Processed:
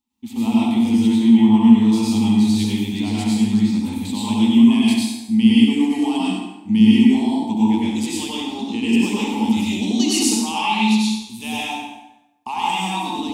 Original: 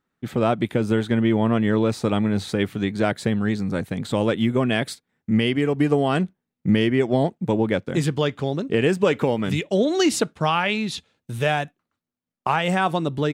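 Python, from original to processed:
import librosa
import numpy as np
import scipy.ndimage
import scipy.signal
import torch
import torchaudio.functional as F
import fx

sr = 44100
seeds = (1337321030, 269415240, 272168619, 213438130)

p1 = fx.curve_eq(x, sr, hz=(100.0, 150.0, 220.0, 570.0, 870.0, 1500.0, 2500.0, 3700.0, 7100.0), db=(0, -30, 12, -21, 7, -21, 5, 7, 10))
p2 = p1 + fx.echo_feedback(p1, sr, ms=69, feedback_pct=44, wet_db=-8.5, dry=0)
p3 = fx.rev_plate(p2, sr, seeds[0], rt60_s=0.95, hf_ratio=0.75, predelay_ms=85, drr_db=-6.5)
y = p3 * librosa.db_to_amplitude(-8.0)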